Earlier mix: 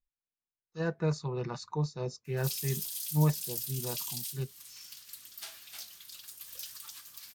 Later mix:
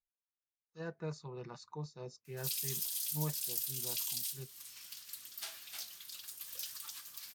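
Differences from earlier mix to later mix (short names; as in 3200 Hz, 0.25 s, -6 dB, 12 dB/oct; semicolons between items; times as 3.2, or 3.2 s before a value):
speech -9.5 dB; master: add low shelf 150 Hz -5.5 dB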